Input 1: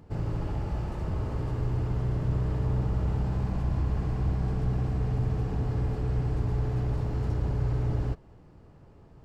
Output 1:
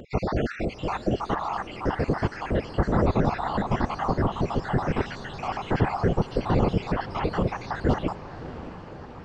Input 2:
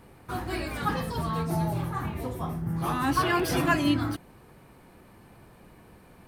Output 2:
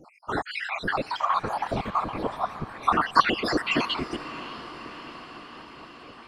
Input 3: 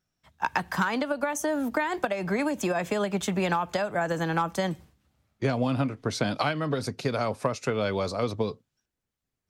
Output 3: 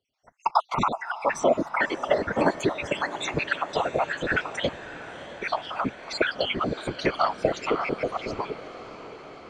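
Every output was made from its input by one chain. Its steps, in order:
random holes in the spectrogram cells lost 66%; high-pass 660 Hz 6 dB/octave; distance through air 120 m; whisper effect; echo that smears into a reverb 629 ms, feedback 67%, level -14.5 dB; normalise loudness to -27 LUFS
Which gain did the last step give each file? +21.0 dB, +12.5 dB, +11.5 dB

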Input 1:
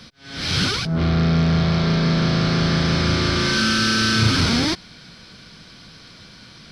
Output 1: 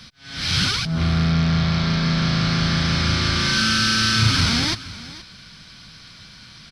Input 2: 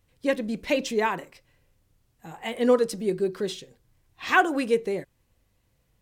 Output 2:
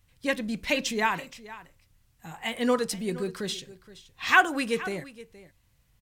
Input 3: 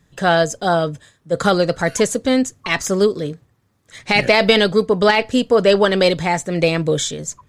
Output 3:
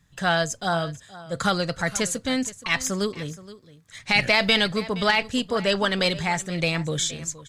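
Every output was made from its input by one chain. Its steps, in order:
peaking EQ 420 Hz -10.5 dB 1.7 oct; delay 471 ms -17.5 dB; peak normalisation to -6 dBFS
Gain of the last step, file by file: +1.5 dB, +3.5 dB, -2.5 dB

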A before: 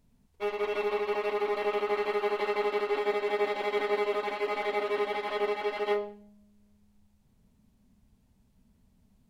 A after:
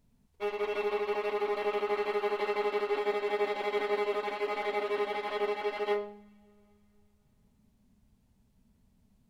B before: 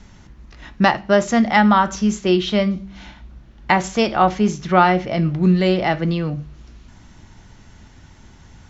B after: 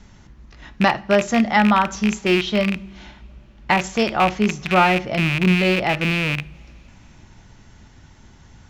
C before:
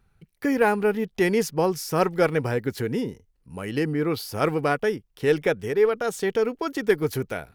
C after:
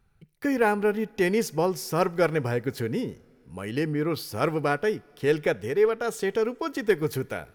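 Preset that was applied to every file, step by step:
rattle on loud lows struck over -24 dBFS, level -9 dBFS; two-slope reverb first 0.35 s, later 3.5 s, from -18 dB, DRR 19 dB; trim -2 dB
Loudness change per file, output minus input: -2.0 LU, -1.0 LU, -2.0 LU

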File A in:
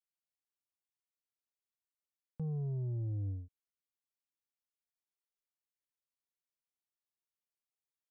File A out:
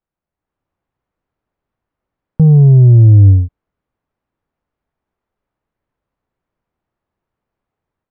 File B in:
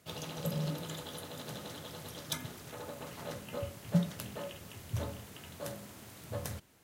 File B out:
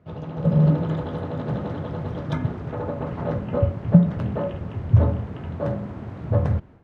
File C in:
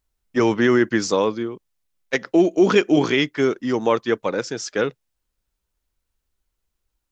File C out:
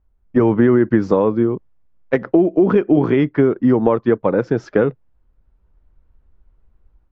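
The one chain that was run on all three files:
level rider gain up to 8.5 dB; low-pass 1.2 kHz 12 dB/octave; compression 4:1, threshold -20 dBFS; bass shelf 190 Hz +9.5 dB; peak normalisation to -1.5 dBFS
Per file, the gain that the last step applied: +16.0 dB, +6.0 dB, +6.0 dB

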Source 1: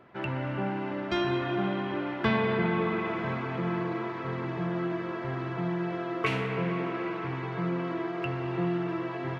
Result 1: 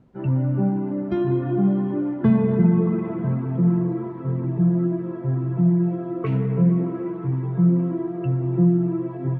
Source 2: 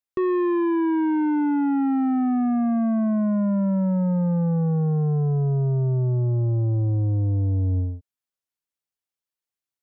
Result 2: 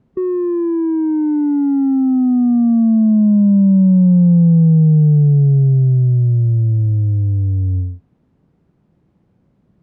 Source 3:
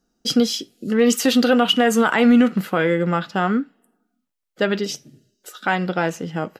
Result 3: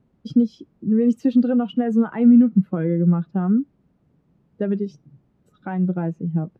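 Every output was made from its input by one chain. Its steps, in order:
expander on every frequency bin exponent 1.5; compression 1.5:1, threshold -30 dBFS; added noise pink -65 dBFS; band-pass filter 170 Hz, Q 1.5; peak normalisation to -6 dBFS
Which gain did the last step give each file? +18.0 dB, +16.0 dB, +12.0 dB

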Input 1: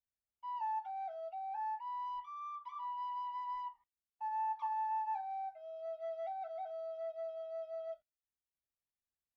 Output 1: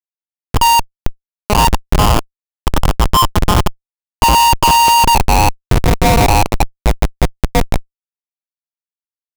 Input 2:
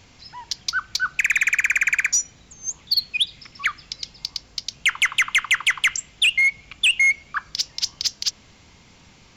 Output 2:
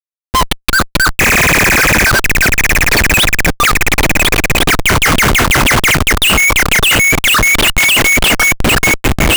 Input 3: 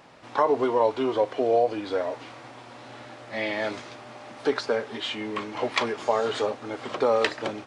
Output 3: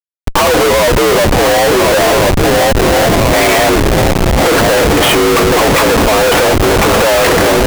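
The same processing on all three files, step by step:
mistuned SSB +57 Hz 220–3100 Hz; shuffle delay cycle 1401 ms, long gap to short 3:1, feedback 31%, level -11 dB; Schmitt trigger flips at -36.5 dBFS; peak normalisation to -3 dBFS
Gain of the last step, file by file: +32.5 dB, +16.0 dB, +18.0 dB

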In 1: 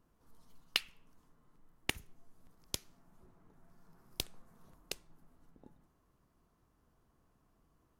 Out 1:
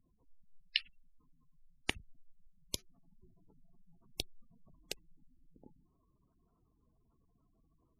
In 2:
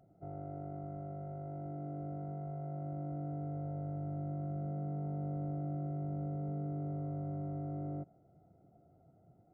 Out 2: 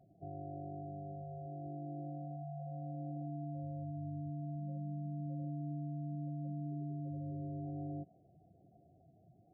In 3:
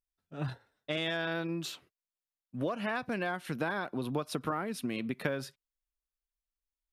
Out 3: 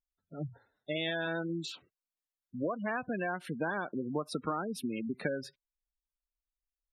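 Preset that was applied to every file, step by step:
spectral gate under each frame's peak -15 dB strong; dynamic bell 130 Hz, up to -8 dB, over -59 dBFS, Q 5.5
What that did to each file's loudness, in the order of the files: -0.5 LU, -2.5 LU, -1.0 LU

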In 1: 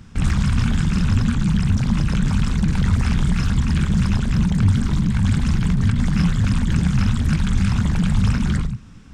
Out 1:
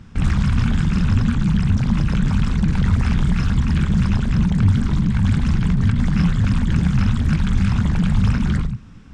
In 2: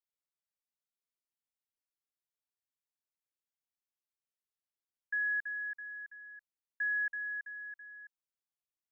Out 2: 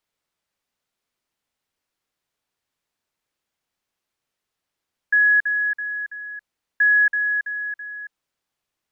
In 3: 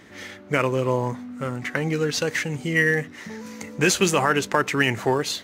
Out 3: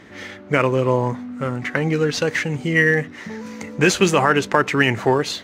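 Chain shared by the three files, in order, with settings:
low-pass 3.8 kHz 6 dB/octave; normalise loudness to -19 LUFS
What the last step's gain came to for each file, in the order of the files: +1.0 dB, +17.5 dB, +4.5 dB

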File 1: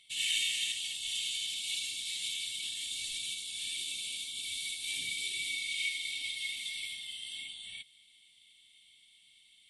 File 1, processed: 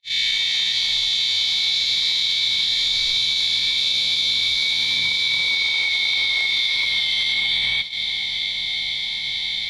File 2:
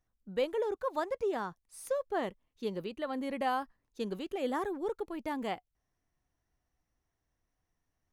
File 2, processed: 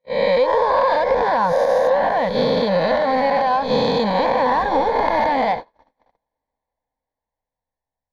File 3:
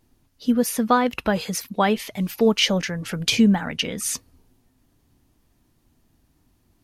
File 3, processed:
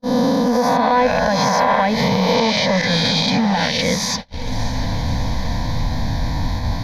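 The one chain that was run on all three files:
reverse spectral sustain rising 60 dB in 1.71 s; recorder AGC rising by 44 dB/s; static phaser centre 1.9 kHz, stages 8; saturation -10 dBFS; compression 16:1, threshold -26 dBFS; graphic EQ with 31 bands 500 Hz +7 dB, 1 kHz +7 dB, 4 kHz +5 dB, 12.5 kHz +6 dB; echo that smears into a reverb 601 ms, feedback 64%, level -14 dB; gate -32 dBFS, range -50 dB; distance through air 100 m; normalise loudness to -18 LUFS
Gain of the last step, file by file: +8.5 dB, +8.5 dB, +11.5 dB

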